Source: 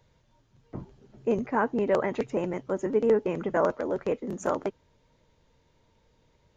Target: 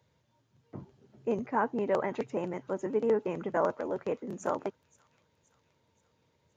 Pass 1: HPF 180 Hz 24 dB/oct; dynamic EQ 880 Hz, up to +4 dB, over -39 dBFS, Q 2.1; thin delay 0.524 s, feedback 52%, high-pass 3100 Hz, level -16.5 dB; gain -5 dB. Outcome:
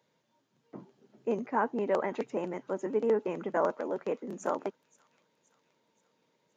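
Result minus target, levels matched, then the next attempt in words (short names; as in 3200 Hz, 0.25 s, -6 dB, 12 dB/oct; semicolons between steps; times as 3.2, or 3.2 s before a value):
125 Hz band -3.5 dB
HPF 80 Hz 24 dB/oct; dynamic EQ 880 Hz, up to +4 dB, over -39 dBFS, Q 2.1; thin delay 0.524 s, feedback 52%, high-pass 3100 Hz, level -16.5 dB; gain -5 dB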